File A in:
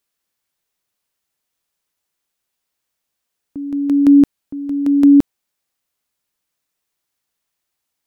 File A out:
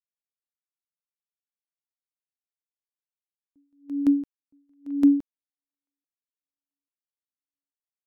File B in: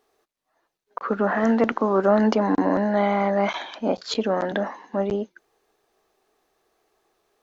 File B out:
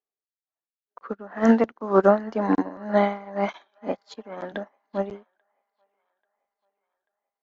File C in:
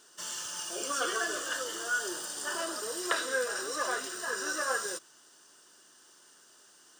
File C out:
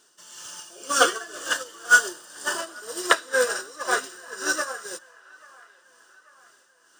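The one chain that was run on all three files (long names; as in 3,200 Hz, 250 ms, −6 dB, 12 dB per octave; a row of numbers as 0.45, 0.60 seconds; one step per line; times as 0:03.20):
amplitude tremolo 2 Hz, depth 61%
delay with a band-pass on its return 838 ms, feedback 54%, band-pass 1,400 Hz, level −12 dB
expander for the loud parts 2.5 to 1, over −40 dBFS
loudness normalisation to −24 LKFS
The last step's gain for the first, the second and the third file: −5.0, +5.5, +17.5 decibels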